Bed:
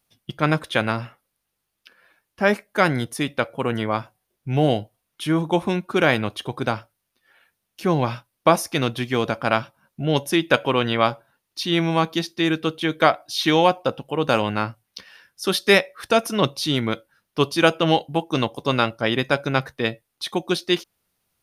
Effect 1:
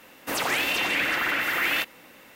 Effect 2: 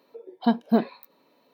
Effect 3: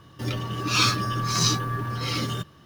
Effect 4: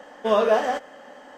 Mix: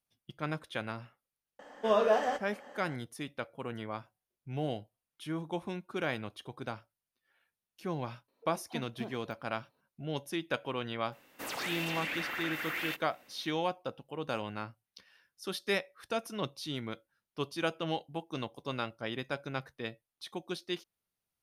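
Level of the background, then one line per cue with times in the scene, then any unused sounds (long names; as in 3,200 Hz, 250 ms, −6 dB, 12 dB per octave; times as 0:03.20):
bed −16 dB
0:01.59: mix in 4 −7 dB
0:08.28: mix in 2 −14.5 dB + downward compressor 2 to 1, threshold −24 dBFS
0:11.12: mix in 1 −12 dB
not used: 3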